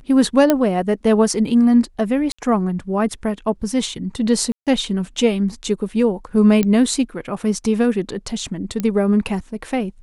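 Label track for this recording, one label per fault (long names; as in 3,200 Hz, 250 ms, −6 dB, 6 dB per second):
0.500000	0.500000	click −2 dBFS
2.320000	2.380000	drop-out 65 ms
4.520000	4.670000	drop-out 147 ms
6.630000	6.630000	click −6 dBFS
8.800000	8.800000	click −10 dBFS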